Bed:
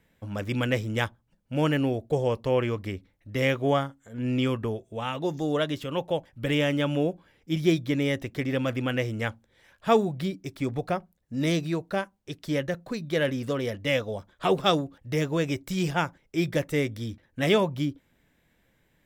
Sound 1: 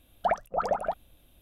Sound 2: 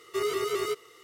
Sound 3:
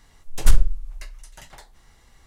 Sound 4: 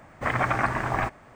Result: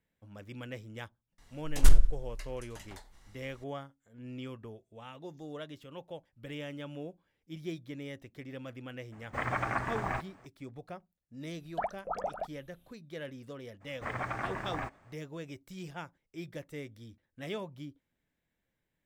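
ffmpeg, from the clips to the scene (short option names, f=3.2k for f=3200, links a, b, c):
-filter_complex "[4:a]asplit=2[a][b];[0:a]volume=-16.5dB[c];[3:a]asplit=2[d][e];[e]adelay=91,lowpass=f=4.4k:p=1,volume=-19.5dB,asplit=2[f][g];[g]adelay=91,lowpass=f=4.4k:p=1,volume=0.49,asplit=2[h][i];[i]adelay=91,lowpass=f=4.4k:p=1,volume=0.49,asplit=2[j][k];[k]adelay=91,lowpass=f=4.4k:p=1,volume=0.49[l];[d][f][h][j][l]amix=inputs=5:normalize=0[m];[b]acontrast=72[n];[m]atrim=end=2.26,asetpts=PTS-STARTPTS,volume=-5.5dB,afade=t=in:d=0.004:c=hsin,afade=t=out:st=2.256:d=0.004:c=hsin,adelay=1380[o];[a]atrim=end=1.35,asetpts=PTS-STARTPTS,volume=-8dB,afade=t=in:d=0.004:c=hsin,afade=t=out:st=1.346:d=0.004:c=hsin,adelay=9120[p];[1:a]atrim=end=1.41,asetpts=PTS-STARTPTS,volume=-8dB,afade=t=in:d=0.004:c=hsin,afade=t=out:st=1.406:d=0.004:c=hsin,adelay=11530[q];[n]atrim=end=1.35,asetpts=PTS-STARTPTS,volume=-18dB,afade=t=in:d=0.02,afade=t=out:st=1.33:d=0.02,adelay=608580S[r];[c][o][p][q][r]amix=inputs=5:normalize=0"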